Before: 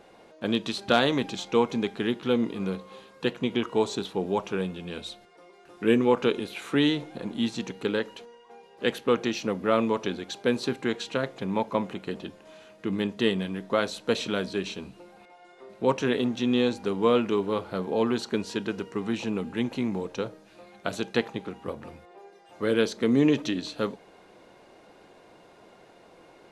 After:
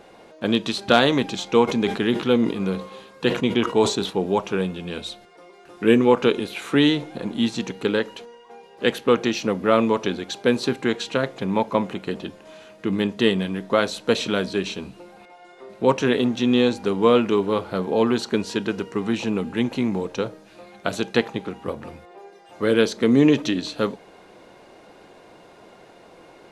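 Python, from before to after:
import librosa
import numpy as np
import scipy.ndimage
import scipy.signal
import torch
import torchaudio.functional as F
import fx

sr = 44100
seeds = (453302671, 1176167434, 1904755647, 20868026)

y = fx.sustainer(x, sr, db_per_s=110.0, at=(1.67, 4.09), fade=0.02)
y = F.gain(torch.from_numpy(y), 5.5).numpy()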